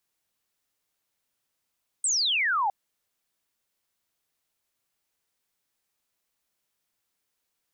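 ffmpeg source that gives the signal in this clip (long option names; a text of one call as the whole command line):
ffmpeg -f lavfi -i "aevalsrc='0.0794*clip(t/0.002,0,1)*clip((0.66-t)/0.002,0,1)*sin(2*PI*8600*0.66/log(760/8600)*(exp(log(760/8600)*t/0.66)-1))':duration=0.66:sample_rate=44100" out.wav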